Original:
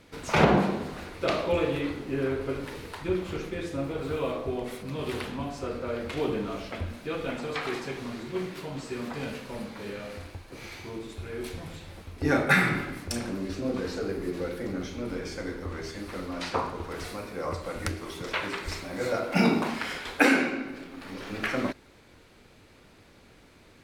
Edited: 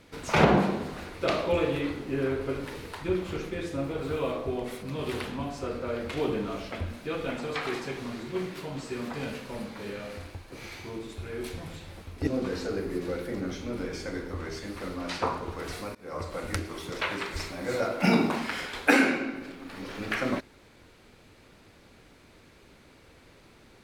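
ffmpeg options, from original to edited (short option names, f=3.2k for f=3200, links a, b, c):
-filter_complex "[0:a]asplit=3[a][b][c];[a]atrim=end=12.272[d];[b]atrim=start=13.588:end=17.27,asetpts=PTS-STARTPTS,afade=t=out:st=3.678:d=0.004:c=hsin:silence=0.0630957[e];[c]atrim=start=17.27,asetpts=PTS-STARTPTS,afade=t=in:d=0.48:c=qsin:silence=0.0630957[f];[e][f]concat=n=2:v=0:a=1[g];[d][g]acrossfade=d=0.004:c1=hsin:c2=hsin"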